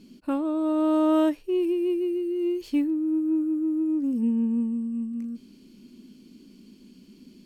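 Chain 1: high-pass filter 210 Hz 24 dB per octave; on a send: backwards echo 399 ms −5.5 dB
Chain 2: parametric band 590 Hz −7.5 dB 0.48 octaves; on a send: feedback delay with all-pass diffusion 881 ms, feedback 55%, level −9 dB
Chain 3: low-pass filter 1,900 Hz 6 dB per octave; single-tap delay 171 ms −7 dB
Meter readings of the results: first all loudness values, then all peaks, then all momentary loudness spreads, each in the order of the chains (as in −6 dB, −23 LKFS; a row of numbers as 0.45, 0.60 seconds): −24.5, −26.0, −25.5 LKFS; −10.0, −12.5, −12.0 dBFS; 10, 17, 11 LU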